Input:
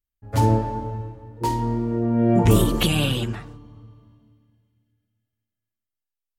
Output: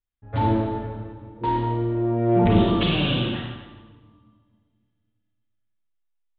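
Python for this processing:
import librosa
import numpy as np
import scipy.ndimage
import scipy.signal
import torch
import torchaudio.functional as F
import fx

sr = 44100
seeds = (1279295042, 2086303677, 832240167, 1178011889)

p1 = fx.rev_schroeder(x, sr, rt60_s=1.1, comb_ms=33, drr_db=-1.5)
p2 = np.clip(10.0 ** (18.5 / 20.0) * p1, -1.0, 1.0) / 10.0 ** (18.5 / 20.0)
p3 = p1 + F.gain(torch.from_numpy(p2), -9.0).numpy()
p4 = scipy.signal.sosfilt(scipy.signal.ellip(4, 1.0, 40, 3700.0, 'lowpass', fs=sr, output='sos'), p3)
y = F.gain(torch.from_numpy(p4), -4.5).numpy()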